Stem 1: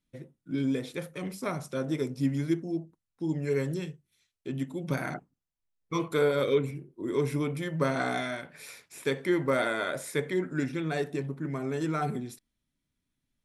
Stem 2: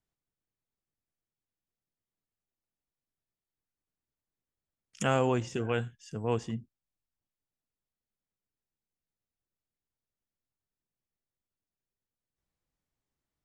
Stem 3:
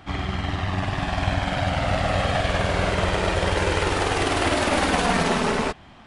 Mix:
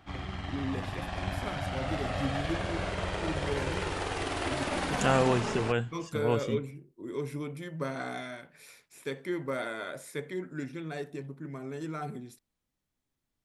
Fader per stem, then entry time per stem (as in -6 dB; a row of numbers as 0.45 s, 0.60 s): -7.0 dB, +1.5 dB, -11.0 dB; 0.00 s, 0.00 s, 0.00 s